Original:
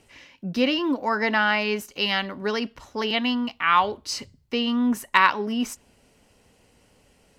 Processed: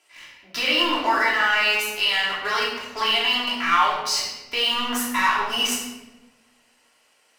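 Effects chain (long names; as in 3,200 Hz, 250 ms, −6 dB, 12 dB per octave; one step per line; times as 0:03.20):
high-pass filter 890 Hz 12 dB per octave
leveller curve on the samples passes 2
downward compressor 2.5 to 1, threshold −21 dBFS, peak gain reduction 8 dB
brickwall limiter −18 dBFS, peak gain reduction 10.5 dB
rectangular room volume 580 cubic metres, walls mixed, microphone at 3 metres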